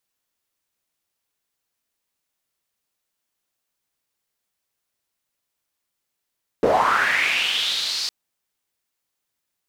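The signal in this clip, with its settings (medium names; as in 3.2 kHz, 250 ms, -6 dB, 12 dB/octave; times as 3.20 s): swept filtered noise pink, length 1.46 s bandpass, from 390 Hz, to 4.8 kHz, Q 4.9, linear, gain ramp -9 dB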